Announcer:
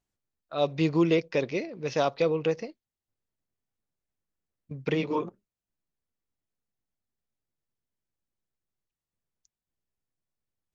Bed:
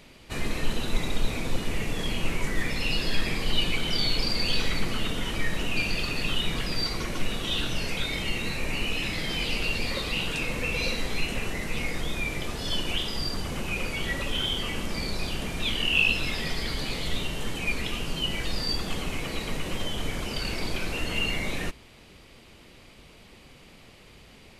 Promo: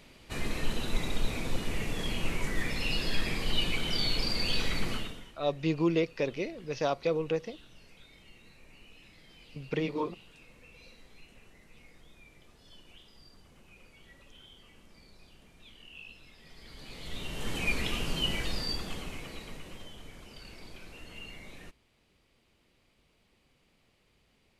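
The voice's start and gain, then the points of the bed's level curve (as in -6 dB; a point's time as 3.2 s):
4.85 s, -4.0 dB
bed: 4.94 s -4 dB
5.38 s -26.5 dB
16.37 s -26.5 dB
17.56 s -1.5 dB
18.28 s -1.5 dB
20.05 s -18 dB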